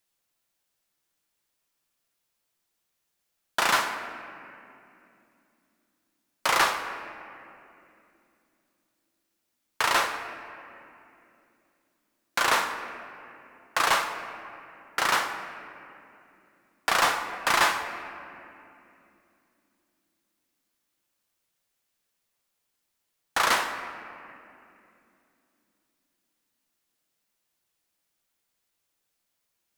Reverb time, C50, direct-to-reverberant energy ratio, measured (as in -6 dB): 2.8 s, 8.5 dB, 5.5 dB